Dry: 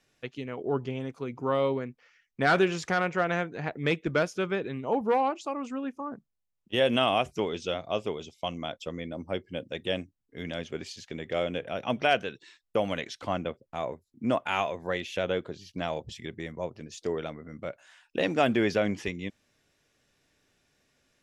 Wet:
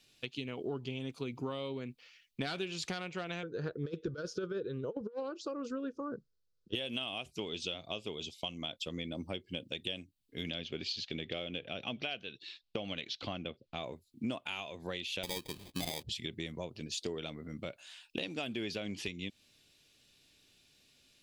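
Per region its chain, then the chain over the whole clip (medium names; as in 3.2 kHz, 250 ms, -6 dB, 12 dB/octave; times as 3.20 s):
3.43–6.75 s: FFT filter 130 Hz 0 dB, 250 Hz -6 dB, 490 Hz +10 dB, 740 Hz -15 dB, 1.5 kHz +5 dB, 2.2 kHz -20 dB, 5.5 kHz -4 dB, 10 kHz -22 dB + compressor with a negative ratio -26 dBFS, ratio -0.5
10.50–13.84 s: low-pass 5.4 kHz 24 dB/octave + band-stop 950 Hz, Q 9.9
15.23–16.03 s: low-pass 4.4 kHz 24 dB/octave + sample-rate reducer 1.4 kHz
whole clip: high-order bell 3.3 kHz +11 dB 1.2 oct; compression 6:1, threshold -33 dBFS; FFT filter 330 Hz 0 dB, 520 Hz -4 dB, 2.4 kHz -5 dB, 9.1 kHz +7 dB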